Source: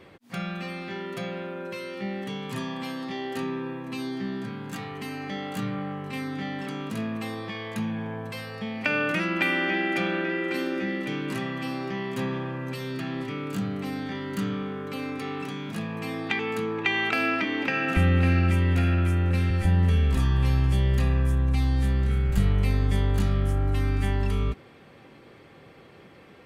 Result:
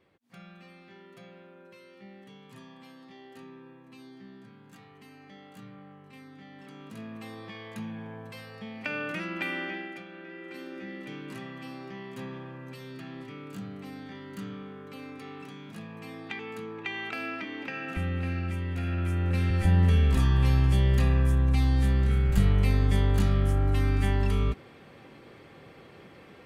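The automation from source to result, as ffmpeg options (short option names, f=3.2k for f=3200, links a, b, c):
-af "volume=12dB,afade=t=in:st=6.48:d=1:silence=0.354813,afade=t=out:st=9.6:d=0.45:silence=0.251189,afade=t=in:st=10.05:d=1.03:silence=0.316228,afade=t=in:st=18.75:d=1.01:silence=0.316228"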